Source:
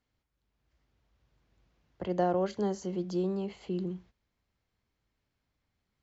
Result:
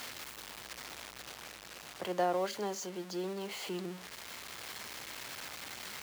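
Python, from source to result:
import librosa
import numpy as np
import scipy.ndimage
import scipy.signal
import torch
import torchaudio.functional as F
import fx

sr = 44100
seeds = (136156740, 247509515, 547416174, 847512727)

y = x + 0.5 * 10.0 ** (-41.0 / 20.0) * np.sign(x)
y = fx.highpass(y, sr, hz=1000.0, slope=6)
y = fx.rider(y, sr, range_db=4, speed_s=2.0)
y = y * librosa.db_to_amplitude(3.5)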